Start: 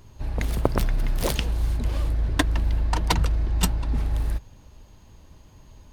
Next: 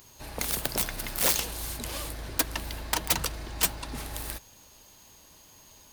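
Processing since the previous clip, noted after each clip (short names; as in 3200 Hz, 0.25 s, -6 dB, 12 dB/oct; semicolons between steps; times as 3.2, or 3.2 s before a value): RIAA curve recording; wrapped overs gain 14.5 dB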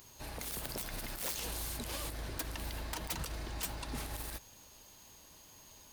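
limiter -26 dBFS, peak gain reduction 11.5 dB; gain -3 dB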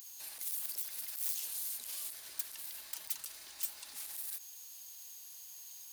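limiter -36.5 dBFS, peak gain reduction 7.5 dB; differentiator; gain +7 dB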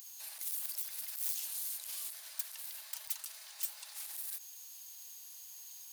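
steep high-pass 570 Hz 36 dB/oct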